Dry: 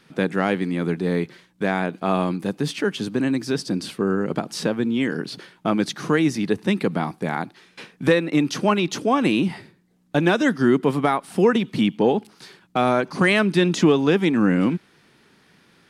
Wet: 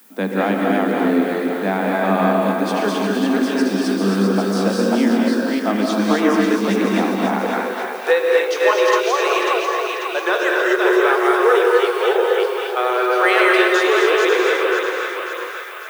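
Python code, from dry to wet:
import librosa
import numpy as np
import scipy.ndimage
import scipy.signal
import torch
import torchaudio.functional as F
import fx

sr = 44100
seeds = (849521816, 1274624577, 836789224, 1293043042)

y = fx.reverse_delay(x, sr, ms=311, wet_db=-2)
y = fx.cheby_ripple_highpass(y, sr, hz=fx.steps((0.0, 190.0), (7.4, 360.0)), ripple_db=6)
y = fx.dmg_noise_colour(y, sr, seeds[0], colour='violet', level_db=-54.0)
y = fx.echo_split(y, sr, split_hz=640.0, low_ms=133, high_ms=542, feedback_pct=52, wet_db=-6.5)
y = fx.rev_gated(y, sr, seeds[1], gate_ms=290, shape='rising', drr_db=0.0)
y = y * librosa.db_to_amplitude(3.5)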